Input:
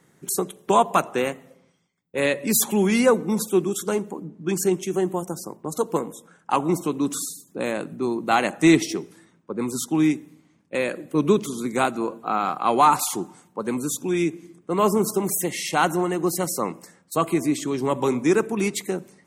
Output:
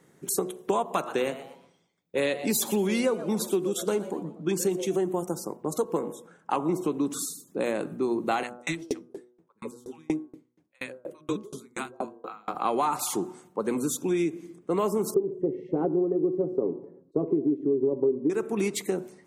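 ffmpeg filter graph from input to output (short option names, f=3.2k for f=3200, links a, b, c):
-filter_complex "[0:a]asettb=1/sr,asplit=3[a][b][c];[a]atrim=end=0.934[d];[b]atrim=start=0.93:end=4.96,asetpts=PTS-STARTPTS,afade=t=in:d=0.004:c=qsin,afade=t=out:st=4.026:d=0.004:c=qsin,equalizer=f=3.7k:w=2:g=5.5,asplit=4[e][f][g][h];[f]adelay=120,afreqshift=150,volume=-18dB[i];[g]adelay=240,afreqshift=300,volume=-27.6dB[j];[h]adelay=360,afreqshift=450,volume=-37.3dB[k];[e][i][j][k]amix=inputs=4:normalize=0,atrim=end_sample=177723[l];[c]atrim=start=4.956[m];[d][l]acrossfade=d=0.004:c1=hsin:c2=qsin[n];[n][m]acrossfade=d=0.004:c1=qsin:c2=hsin,asettb=1/sr,asplit=3[o][p][q];[o]atrim=end=5.844[r];[p]atrim=start=5.84:end=7.19,asetpts=PTS-STARTPTS,afade=t=in:d=0.004:c=qsin,afade=t=out:st=1.346:d=0.004:c=qsin,highpass=57,highshelf=f=4.1k:g=-4.5[s];[q]atrim=start=7.186[t];[r][s]acrossfade=d=0.004:c1=hsin:c2=qsin[u];[u][t]acrossfade=d=0.004:c1=qsin:c2=hsin,asettb=1/sr,asplit=3[v][w][x];[v]atrim=end=8.434[y];[w]atrim=start=8.43:end=12.55,asetpts=PTS-STARTPTS,afade=t=in:d=0.004:c=qsin,afade=t=out:st=4.116:d=0.004:c=qsin,acrossover=split=260|860[z][aa][ab];[z]adelay=60[ac];[aa]adelay=150[ad];[ac][ad][ab]amix=inputs=3:normalize=0,atrim=end_sample=181692,aeval=exprs='val(0)*pow(10,-37*if(lt(mod(4.2*n/s,1),2*abs(4.2)/1000),1-mod(4.2*n/s,1)/(2*abs(4.2)/1000),(mod(4.2*n/s,1)-2*abs(4.2)/1000)/(1-2*abs(4.2)/1000))/20)':c=same[ae];[x]atrim=start=12.546[af];[y][ae]acrossfade=d=0.004:c1=hsin:c2=qsin[ag];[ag][af]acrossfade=d=0.004:c1=qsin:c2=hsin,asettb=1/sr,asplit=3[ah][ai][aj];[ah]atrim=end=15.144[ak];[ai]atrim=start=15.14:end=18.3,asetpts=PTS-STARTPTS,afade=t=in:d=0.004:c=qsin,afade=t=out:st=3.156:d=0.004:c=qsin,lowpass=f=400:t=q:w=3.4,aecho=1:1:7.3:0.43,atrim=end_sample=139356[al];[aj]atrim=start=18.296[am];[ak][al]acrossfade=d=0.004:c1=hsin:c2=qsin[an];[an][am]acrossfade=d=0.004:c1=qsin:c2=hsin,equalizer=f=430:w=0.93:g=5,bandreject=f=122.1:t=h:w=4,bandreject=f=244.2:t=h:w=4,bandreject=f=366.3:t=h:w=4,bandreject=f=488.4:t=h:w=4,bandreject=f=610.5:t=h:w=4,bandreject=f=732.6:t=h:w=4,bandreject=f=854.7:t=h:w=4,bandreject=f=976.8:t=h:w=4,bandreject=f=1.0989k:t=h:w=4,bandreject=f=1.221k:t=h:w=4,bandreject=f=1.3431k:t=h:w=4,bandreject=f=1.4652k:t=h:w=4,bandreject=f=1.5873k:t=h:w=4,acompressor=threshold=-20dB:ratio=6,volume=-2.5dB"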